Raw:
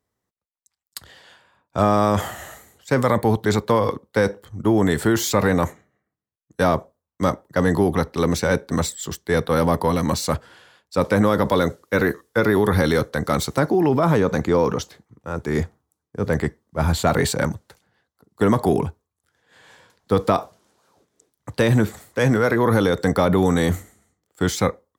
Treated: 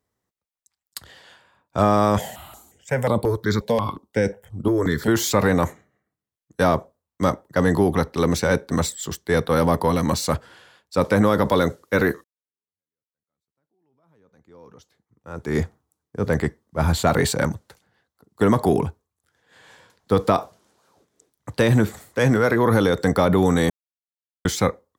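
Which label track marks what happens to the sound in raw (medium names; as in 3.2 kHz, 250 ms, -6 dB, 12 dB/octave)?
2.180000	5.080000	stepped phaser 5.6 Hz 330–6300 Hz
12.240000	15.560000	fade in exponential
23.700000	24.450000	mute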